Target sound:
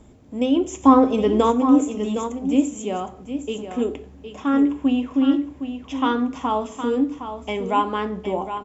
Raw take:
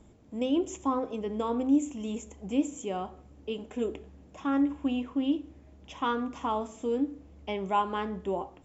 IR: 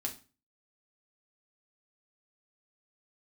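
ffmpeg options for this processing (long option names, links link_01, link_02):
-filter_complex "[0:a]asplit=3[link_01][link_02][link_03];[link_01]afade=type=out:start_time=0.83:duration=0.02[link_04];[link_02]acontrast=86,afade=type=in:start_time=0.83:duration=0.02,afade=type=out:start_time=1.5:duration=0.02[link_05];[link_03]afade=type=in:start_time=1.5:duration=0.02[link_06];[link_04][link_05][link_06]amix=inputs=3:normalize=0,aecho=1:1:763:0.335,asplit=2[link_07][link_08];[1:a]atrim=start_sample=2205[link_09];[link_08][link_09]afir=irnorm=-1:irlink=0,volume=-6.5dB[link_10];[link_07][link_10]amix=inputs=2:normalize=0,volume=4dB"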